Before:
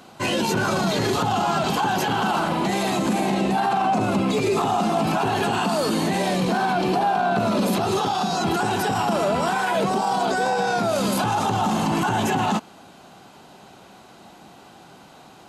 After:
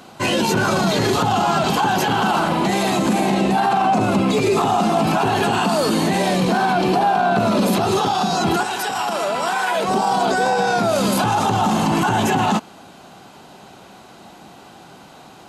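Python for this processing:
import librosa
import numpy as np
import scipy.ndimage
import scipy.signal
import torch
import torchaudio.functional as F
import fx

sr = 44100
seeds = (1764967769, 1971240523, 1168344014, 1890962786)

y = fx.highpass(x, sr, hz=fx.line((8.62, 1200.0), (9.87, 530.0)), slope=6, at=(8.62, 9.87), fade=0.02)
y = F.gain(torch.from_numpy(y), 4.0).numpy()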